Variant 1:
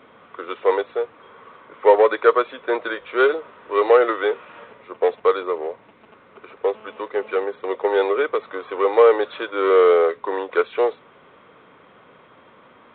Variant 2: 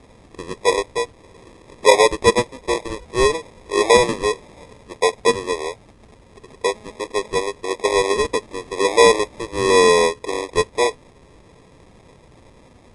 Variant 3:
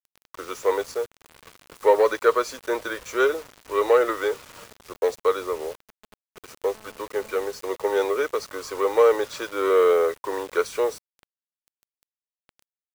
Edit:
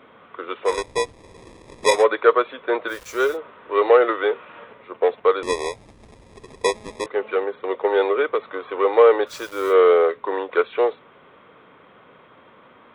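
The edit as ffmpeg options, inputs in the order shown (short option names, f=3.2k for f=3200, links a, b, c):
-filter_complex "[1:a]asplit=2[a][b];[2:a]asplit=2[c][d];[0:a]asplit=5[e][f][g][h][i];[e]atrim=end=0.87[j];[a]atrim=start=0.63:end=2.05[k];[f]atrim=start=1.81:end=2.93[l];[c]atrim=start=2.87:end=3.38[m];[g]atrim=start=3.32:end=5.432[n];[b]atrim=start=5.428:end=7.062[o];[h]atrim=start=7.058:end=9.32[p];[d]atrim=start=9.26:end=9.75[q];[i]atrim=start=9.69[r];[j][k]acrossfade=d=0.24:c1=tri:c2=tri[s];[s][l]acrossfade=d=0.24:c1=tri:c2=tri[t];[t][m]acrossfade=d=0.06:c1=tri:c2=tri[u];[u][n]acrossfade=d=0.06:c1=tri:c2=tri[v];[v][o]acrossfade=d=0.004:c1=hsin:c2=hsin[w];[w][p]acrossfade=d=0.004:c1=hsin:c2=hsin[x];[x][q]acrossfade=d=0.06:c1=tri:c2=tri[y];[y][r]acrossfade=d=0.06:c1=tri:c2=tri"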